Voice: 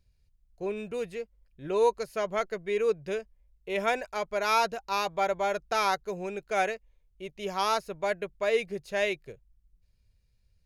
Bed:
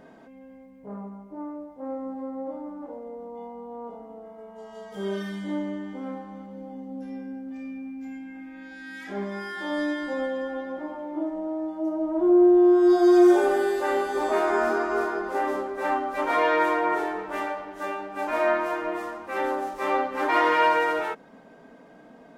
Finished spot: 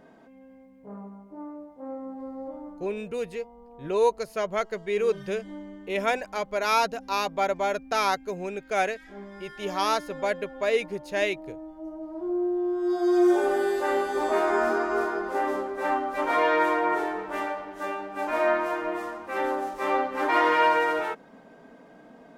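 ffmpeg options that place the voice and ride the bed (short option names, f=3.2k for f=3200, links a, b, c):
-filter_complex "[0:a]adelay=2200,volume=2dB[a];[1:a]volume=6.5dB,afade=t=out:st=2.66:d=0.23:silence=0.446684,afade=t=in:st=12.75:d=1.01:silence=0.316228[b];[a][b]amix=inputs=2:normalize=0"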